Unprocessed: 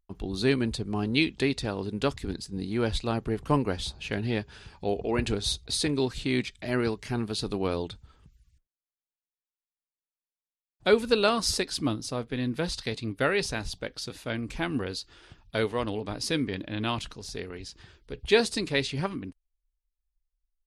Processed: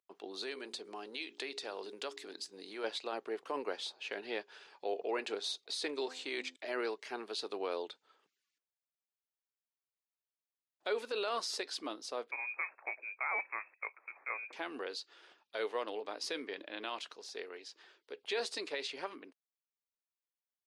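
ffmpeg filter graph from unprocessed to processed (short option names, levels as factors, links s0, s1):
-filter_complex "[0:a]asettb=1/sr,asplit=3[s0][s1][s2];[s0]atrim=end=0.434[s3];[s1]atrim=start=0.43:end=2.84,asetpts=PTS-STARTPTS,afade=t=in:d=0.004:c=qsin,afade=t=out:st=2.406:d=0.004:c=qsin,highshelf=f=3700:g=8,bandreject=f=58.62:t=h:w=4,bandreject=f=117.24:t=h:w=4,bandreject=f=175.86:t=h:w=4,bandreject=f=234.48:t=h:w=4,bandreject=f=293.1:t=h:w=4,bandreject=f=351.72:t=h:w=4,bandreject=f=410.34:t=h:w=4,acompressor=threshold=0.0355:ratio=5:attack=3.2:release=140:knee=1:detection=peak[s4];[s2]atrim=start=2.836[s5];[s3][s4]acrossfade=d=0.004:c1=hsin:c2=qsin[s6];[s6][s5]acrossfade=d=0.004:c1=qsin:c2=hsin,asettb=1/sr,asplit=3[s7][s8][s9];[s7]atrim=end=5.954[s10];[s8]atrim=start=5.95:end=6.56,asetpts=PTS-STARTPTS,afade=t=in:d=0.004:c=qsin,afade=t=out:st=0.606:d=0.004:c=qsin,equalizer=f=7200:t=o:w=0.67:g=6,bandreject=f=85.24:t=h:w=4,bandreject=f=170.48:t=h:w=4,bandreject=f=255.72:t=h:w=4,bandreject=f=340.96:t=h:w=4,bandreject=f=426.2:t=h:w=4,bandreject=f=511.44:t=h:w=4,bandreject=f=596.68:t=h:w=4,bandreject=f=681.92:t=h:w=4,bandreject=f=767.16:t=h:w=4,bandreject=f=852.4:t=h:w=4,bandreject=f=937.64:t=h:w=4,bandreject=f=1022.88:t=h:w=4[s11];[s9]atrim=start=6.556[s12];[s10][s11]acrossfade=d=0.004:c1=hsin:c2=qsin[s13];[s13][s12]acrossfade=d=0.004:c1=qsin:c2=hsin,asettb=1/sr,asplit=3[s14][s15][s16];[s14]atrim=end=12.314[s17];[s15]atrim=start=12.31:end=14.53,asetpts=PTS-STARTPTS,afade=t=in:d=0.004:c=qsin,afade=t=out:st=2.216:d=0.004:c=qsin,highpass=330,lowpass=f=2300:t=q:w=0.5098,lowpass=f=2300:t=q:w=0.6013,lowpass=f=2300:t=q:w=0.9,lowpass=f=2300:t=q:w=2.563,afreqshift=-2700[s18];[s16]atrim=start=14.526[s19];[s17][s18]acrossfade=d=0.004:c1=hsin:c2=qsin[s20];[s20][s19]acrossfade=d=0.004:c1=qsin:c2=hsin,highpass=f=400:w=0.5412,highpass=f=400:w=1.3066,alimiter=limit=0.0841:level=0:latency=1:release=35,equalizer=f=11000:t=o:w=1.1:g=-10.5,volume=0.596"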